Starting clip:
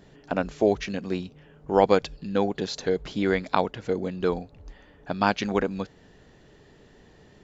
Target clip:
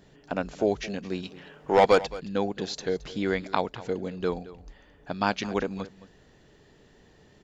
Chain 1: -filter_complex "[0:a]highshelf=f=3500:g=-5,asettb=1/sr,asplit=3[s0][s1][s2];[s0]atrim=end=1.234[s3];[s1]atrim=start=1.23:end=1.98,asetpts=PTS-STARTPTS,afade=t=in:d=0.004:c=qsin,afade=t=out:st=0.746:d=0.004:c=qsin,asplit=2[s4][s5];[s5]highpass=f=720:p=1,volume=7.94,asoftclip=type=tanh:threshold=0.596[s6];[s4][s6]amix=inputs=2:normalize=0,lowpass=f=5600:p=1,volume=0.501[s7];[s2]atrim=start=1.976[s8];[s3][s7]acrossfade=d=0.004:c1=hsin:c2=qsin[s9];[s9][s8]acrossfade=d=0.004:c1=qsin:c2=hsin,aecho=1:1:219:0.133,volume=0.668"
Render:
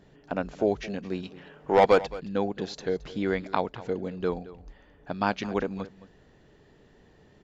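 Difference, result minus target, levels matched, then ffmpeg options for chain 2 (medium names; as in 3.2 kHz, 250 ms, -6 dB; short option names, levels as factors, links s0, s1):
8 kHz band -6.0 dB
-filter_complex "[0:a]highshelf=f=3500:g=3.5,asettb=1/sr,asplit=3[s0][s1][s2];[s0]atrim=end=1.234[s3];[s1]atrim=start=1.23:end=1.98,asetpts=PTS-STARTPTS,afade=t=in:d=0.004:c=qsin,afade=t=out:st=0.746:d=0.004:c=qsin,asplit=2[s4][s5];[s5]highpass=f=720:p=1,volume=7.94,asoftclip=type=tanh:threshold=0.596[s6];[s4][s6]amix=inputs=2:normalize=0,lowpass=f=5600:p=1,volume=0.501[s7];[s2]atrim=start=1.976[s8];[s3][s7]acrossfade=d=0.004:c1=hsin:c2=qsin[s9];[s9][s8]acrossfade=d=0.004:c1=qsin:c2=hsin,aecho=1:1:219:0.133,volume=0.668"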